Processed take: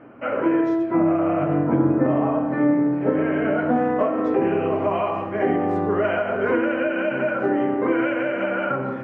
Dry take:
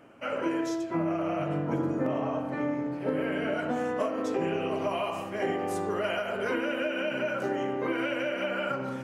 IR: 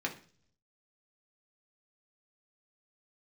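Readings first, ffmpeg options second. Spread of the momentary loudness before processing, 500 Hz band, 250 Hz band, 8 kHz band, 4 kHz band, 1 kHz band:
2 LU, +8.0 dB, +10.5 dB, under -15 dB, n/a, +8.0 dB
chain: -filter_complex "[0:a]lowpass=1.7k,asplit=2[a][b];[1:a]atrim=start_sample=2205,lowpass=6k,lowshelf=f=170:g=8.5[c];[b][c]afir=irnorm=-1:irlink=0,volume=-8.5dB[d];[a][d]amix=inputs=2:normalize=0,volume=5.5dB"

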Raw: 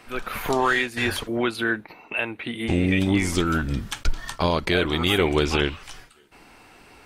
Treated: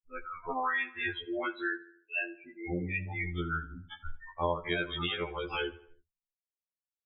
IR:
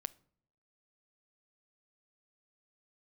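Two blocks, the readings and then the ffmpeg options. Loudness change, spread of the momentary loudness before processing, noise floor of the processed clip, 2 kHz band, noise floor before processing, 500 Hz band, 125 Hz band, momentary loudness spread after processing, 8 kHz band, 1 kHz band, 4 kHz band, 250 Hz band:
-10.5 dB, 10 LU, under -85 dBFS, -8.5 dB, -51 dBFS, -12.0 dB, -13.5 dB, 12 LU, under -40 dB, -8.5 dB, -12.0 dB, -15.5 dB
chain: -filter_complex "[0:a]acrossover=split=1300[a][b];[a]crystalizer=i=6:c=0[c];[c][b]amix=inputs=2:normalize=0,lowpass=9.3k,afftfilt=real='re*gte(hypot(re,im),0.126)':imag='im*gte(hypot(re,im),0.126)':win_size=1024:overlap=0.75,asplit=2[d][e];[e]adelay=79,lowpass=f=3k:p=1,volume=-18dB,asplit=2[f][g];[g]adelay=79,lowpass=f=3k:p=1,volume=0.48,asplit=2[h][i];[i]adelay=79,lowpass=f=3k:p=1,volume=0.48,asplit=2[j][k];[k]adelay=79,lowpass=f=3k:p=1,volume=0.48[l];[d][f][h][j][l]amix=inputs=5:normalize=0,flanger=delay=5:depth=7:regen=-60:speed=0.39:shape=sinusoidal,lowshelf=f=380:g=-8.5,alimiter=limit=-19dB:level=0:latency=1:release=339,equalizer=f=230:t=o:w=0.33:g=-12,afftfilt=real='re*2*eq(mod(b,4),0)':imag='im*2*eq(mod(b,4),0)':win_size=2048:overlap=0.75"

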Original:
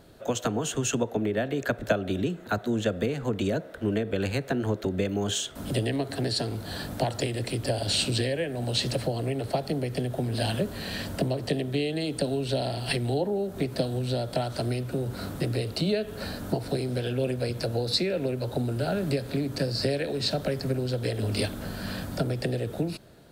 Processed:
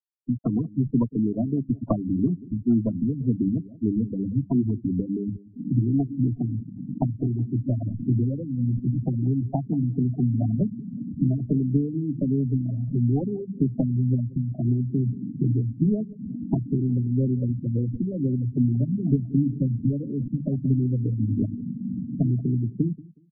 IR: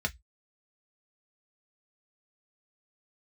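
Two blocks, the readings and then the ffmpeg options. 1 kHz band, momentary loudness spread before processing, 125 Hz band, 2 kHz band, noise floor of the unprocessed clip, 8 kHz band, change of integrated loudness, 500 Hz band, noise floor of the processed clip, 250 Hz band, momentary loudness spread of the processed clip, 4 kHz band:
-9.0 dB, 4 LU, +6.5 dB, under -40 dB, -42 dBFS, under -40 dB, +3.5 dB, -7.5 dB, -45 dBFS, +7.0 dB, 5 LU, under -40 dB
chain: -af "highshelf=f=8.3k:g=11,bandreject=f=50:t=h:w=6,bandreject=f=100:t=h:w=6,bandreject=f=150:t=h:w=6,bandreject=f=200:t=h:w=6,aeval=exprs='0.335*(cos(1*acos(clip(val(0)/0.335,-1,1)))-cos(1*PI/2))+0.15*(cos(2*acos(clip(val(0)/0.335,-1,1)))-cos(2*PI/2))':c=same,equalizer=f=125:t=o:w=1:g=8,equalizer=f=250:t=o:w=1:g=12,equalizer=f=500:t=o:w=1:g=-8,equalizer=f=1k:t=o:w=1:g=8,equalizer=f=2k:t=o:w=1:g=-6,equalizer=f=4k:t=o:w=1:g=-11,equalizer=f=8k:t=o:w=1:g=4,adynamicsmooth=sensitivity=1:basefreq=570,anlmdn=2.51,afftfilt=real='re*gte(hypot(re,im),0.2)':imag='im*gte(hypot(re,im),0.2)':win_size=1024:overlap=0.75,aecho=1:1:184|368:0.1|0.021,afftfilt=real='re*lt(b*sr/1024,330*pow(3600/330,0.5+0.5*sin(2*PI*2.2*pts/sr)))':imag='im*lt(b*sr/1024,330*pow(3600/330,0.5+0.5*sin(2*PI*2.2*pts/sr)))':win_size=1024:overlap=0.75,volume=-2.5dB"

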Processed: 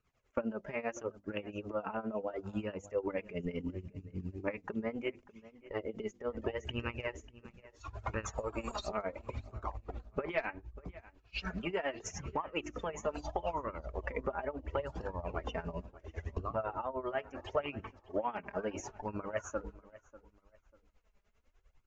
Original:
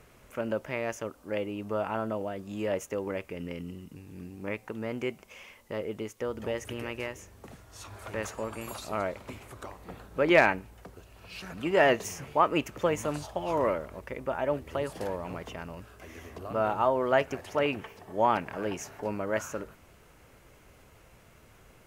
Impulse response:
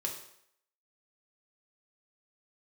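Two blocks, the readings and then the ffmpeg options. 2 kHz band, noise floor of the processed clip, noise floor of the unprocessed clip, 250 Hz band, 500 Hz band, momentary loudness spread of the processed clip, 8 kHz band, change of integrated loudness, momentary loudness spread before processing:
-10.0 dB, -72 dBFS, -58 dBFS, -6.5 dB, -8.0 dB, 10 LU, -6.5 dB, -8.5 dB, 19 LU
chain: -filter_complex "[0:a]agate=range=-11dB:threshold=-45dB:ratio=16:detection=peak,afftdn=nr=14:nf=-43,bandreject=f=50:t=h:w=6,bandreject=f=100:t=h:w=6,bandreject=f=150:t=h:w=6,bandreject=f=200:t=h:w=6,bandreject=f=250:t=h:w=6,bandreject=f=300:t=h:w=6,bandreject=f=350:t=h:w=6,asubboost=boost=5:cutoff=61,acompressor=threshold=-38dB:ratio=8,flanger=delay=0.7:depth=4.3:regen=12:speed=0.73:shape=sinusoidal,tremolo=f=10:d=0.85,asplit=2[a][b];[b]adelay=593,lowpass=f=3.3k:p=1,volume=-18.5dB,asplit=2[c][d];[d]adelay=593,lowpass=f=3.3k:p=1,volume=0.29[e];[c][e]amix=inputs=2:normalize=0[f];[a][f]amix=inputs=2:normalize=0,aresample=16000,aresample=44100,volume=11.5dB"

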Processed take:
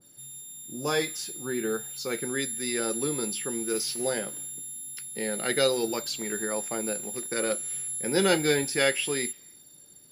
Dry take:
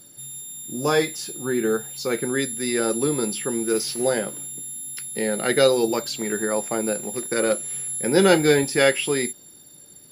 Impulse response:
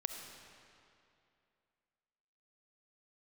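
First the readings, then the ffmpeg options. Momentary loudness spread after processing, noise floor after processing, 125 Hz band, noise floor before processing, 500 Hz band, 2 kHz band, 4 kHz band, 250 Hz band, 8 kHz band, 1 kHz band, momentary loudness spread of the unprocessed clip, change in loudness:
12 LU, -53 dBFS, -7.5 dB, -48 dBFS, -7.5 dB, -5.0 dB, -3.0 dB, -7.5 dB, -3.0 dB, -7.0 dB, 13 LU, -5.5 dB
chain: -filter_complex "[0:a]asplit=2[a][b];[b]highpass=1.2k[c];[1:a]atrim=start_sample=2205,afade=t=out:st=0.41:d=0.01,atrim=end_sample=18522[d];[c][d]afir=irnorm=-1:irlink=0,volume=-18dB[e];[a][e]amix=inputs=2:normalize=0,adynamicequalizer=threshold=0.0178:dfrequency=1700:dqfactor=0.7:tfrequency=1700:tqfactor=0.7:attack=5:release=100:ratio=0.375:range=2:mode=boostabove:tftype=highshelf,volume=-7.5dB"

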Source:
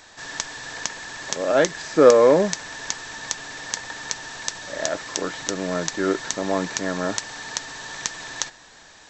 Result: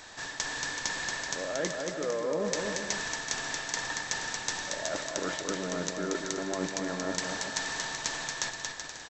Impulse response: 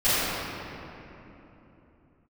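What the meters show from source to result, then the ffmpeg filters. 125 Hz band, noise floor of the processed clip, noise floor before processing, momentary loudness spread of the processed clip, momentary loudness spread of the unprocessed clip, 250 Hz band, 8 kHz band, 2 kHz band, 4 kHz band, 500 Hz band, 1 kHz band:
-7.5 dB, -43 dBFS, -49 dBFS, 2 LU, 14 LU, -9.5 dB, -5.0 dB, -3.5 dB, -3.5 dB, -14.0 dB, -8.5 dB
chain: -af "areverse,acompressor=threshold=-30dB:ratio=12,areverse,aecho=1:1:230|379.5|476.7|539.8|580.9:0.631|0.398|0.251|0.158|0.1"

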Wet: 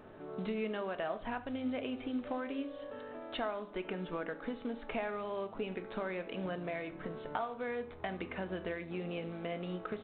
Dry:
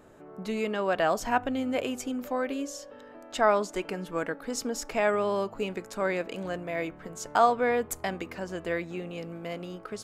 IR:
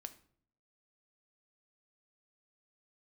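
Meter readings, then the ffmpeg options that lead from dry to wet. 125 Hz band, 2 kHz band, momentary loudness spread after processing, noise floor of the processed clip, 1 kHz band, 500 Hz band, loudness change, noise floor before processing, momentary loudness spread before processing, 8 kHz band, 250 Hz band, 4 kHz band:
-4.5 dB, -9.5 dB, 4 LU, -50 dBFS, -12.5 dB, -9.5 dB, -9.5 dB, -49 dBFS, 14 LU, under -40 dB, -6.0 dB, -8.0 dB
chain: -filter_complex "[0:a]acompressor=threshold=-36dB:ratio=8,aresample=8000,acrusher=bits=6:mode=log:mix=0:aa=0.000001,aresample=44100[a];[1:a]atrim=start_sample=2205[b];[a][b]afir=irnorm=-1:irlink=0,volume=6dB"

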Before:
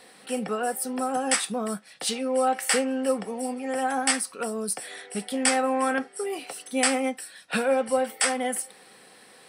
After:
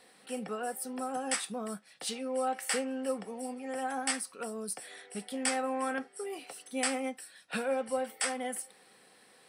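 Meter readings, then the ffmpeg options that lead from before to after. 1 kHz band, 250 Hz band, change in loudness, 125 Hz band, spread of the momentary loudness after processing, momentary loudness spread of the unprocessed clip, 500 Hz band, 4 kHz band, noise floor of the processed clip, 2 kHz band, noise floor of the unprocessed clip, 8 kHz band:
-8.5 dB, -8.5 dB, -8.5 dB, n/a, 9 LU, 9 LU, -8.5 dB, -8.5 dB, -61 dBFS, -8.5 dB, -53 dBFS, -8.5 dB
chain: -af "asoftclip=type=hard:threshold=-9dB,volume=-8.5dB"

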